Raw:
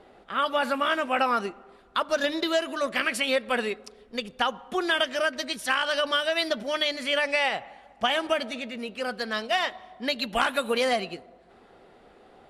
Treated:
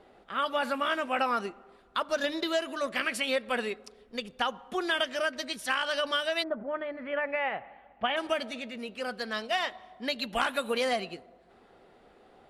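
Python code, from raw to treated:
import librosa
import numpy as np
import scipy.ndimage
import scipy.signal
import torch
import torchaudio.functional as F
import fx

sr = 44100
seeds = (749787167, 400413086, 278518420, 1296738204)

y = fx.lowpass(x, sr, hz=fx.line((6.42, 1300.0), (8.16, 3200.0)), slope=24, at=(6.42, 8.16), fade=0.02)
y = F.gain(torch.from_numpy(y), -4.0).numpy()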